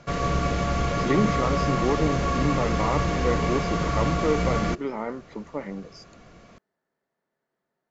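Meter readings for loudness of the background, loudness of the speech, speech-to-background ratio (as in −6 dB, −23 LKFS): −25.5 LKFS, −29.0 LKFS, −3.5 dB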